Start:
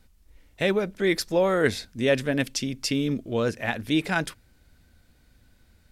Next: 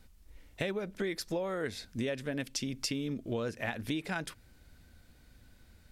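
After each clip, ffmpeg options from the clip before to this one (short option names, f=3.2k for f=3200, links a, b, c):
-af "acompressor=threshold=-31dB:ratio=12"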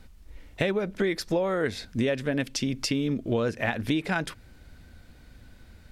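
-af "highshelf=f=5.5k:g=-8,volume=8.5dB"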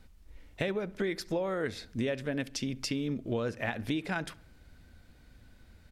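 -filter_complex "[0:a]asplit=2[a][b];[b]adelay=68,lowpass=f=2.8k:p=1,volume=-21dB,asplit=2[c][d];[d]adelay=68,lowpass=f=2.8k:p=1,volume=0.53,asplit=2[e][f];[f]adelay=68,lowpass=f=2.8k:p=1,volume=0.53,asplit=2[g][h];[h]adelay=68,lowpass=f=2.8k:p=1,volume=0.53[i];[a][c][e][g][i]amix=inputs=5:normalize=0,volume=-6dB"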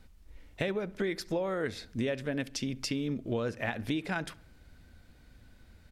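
-af anull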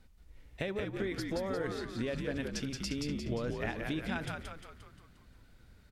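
-filter_complex "[0:a]asplit=8[a][b][c][d][e][f][g][h];[b]adelay=176,afreqshift=-74,volume=-3.5dB[i];[c]adelay=352,afreqshift=-148,volume=-9.2dB[j];[d]adelay=528,afreqshift=-222,volume=-14.9dB[k];[e]adelay=704,afreqshift=-296,volume=-20.5dB[l];[f]adelay=880,afreqshift=-370,volume=-26.2dB[m];[g]adelay=1056,afreqshift=-444,volume=-31.9dB[n];[h]adelay=1232,afreqshift=-518,volume=-37.6dB[o];[a][i][j][k][l][m][n][o]amix=inputs=8:normalize=0,volume=-4.5dB"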